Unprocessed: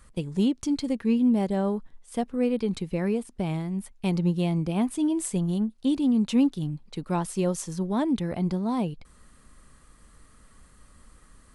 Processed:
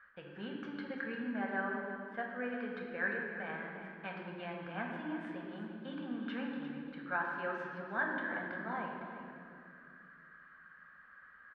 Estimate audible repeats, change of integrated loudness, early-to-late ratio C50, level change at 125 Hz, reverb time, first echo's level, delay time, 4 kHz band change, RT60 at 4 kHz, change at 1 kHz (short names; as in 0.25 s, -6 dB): 2, -13.0 dB, 1.5 dB, -21.5 dB, 2.3 s, -11.0 dB, 0.349 s, -13.5 dB, 1.7 s, -5.0 dB